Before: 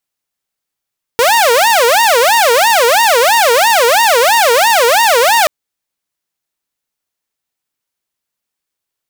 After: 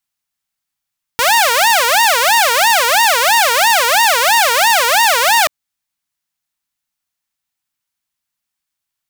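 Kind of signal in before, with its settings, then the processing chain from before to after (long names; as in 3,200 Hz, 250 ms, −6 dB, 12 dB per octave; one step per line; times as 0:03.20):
siren wail 461–937 Hz 3 per second saw −4.5 dBFS 4.28 s
parametric band 440 Hz −15 dB 0.76 octaves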